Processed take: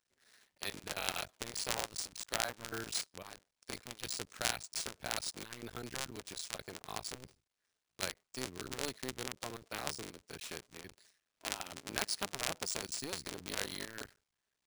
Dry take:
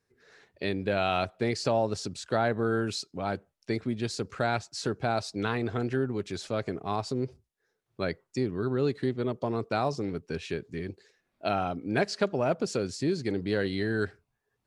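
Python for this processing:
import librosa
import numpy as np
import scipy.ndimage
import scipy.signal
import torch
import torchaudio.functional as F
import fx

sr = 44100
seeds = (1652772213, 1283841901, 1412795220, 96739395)

y = fx.cycle_switch(x, sr, every=2, mode='muted')
y = scipy.signal.lfilter([1.0, -0.9], [1.0], y)
y = np.repeat(y[::3], 3)[:len(y)]
y = F.gain(torch.from_numpy(y), 4.5).numpy()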